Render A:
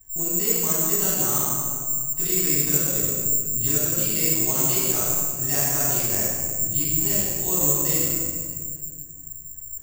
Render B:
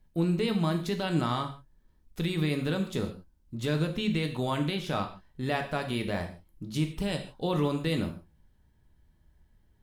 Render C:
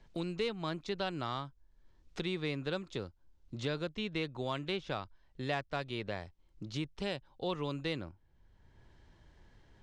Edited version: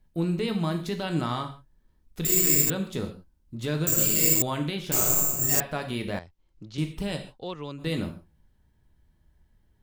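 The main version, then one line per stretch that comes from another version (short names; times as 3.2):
B
2.25–2.7 from A
3.87–4.42 from A
4.92–5.6 from A
6.19–6.78 from C
7.34–7.82 from C, crossfade 0.10 s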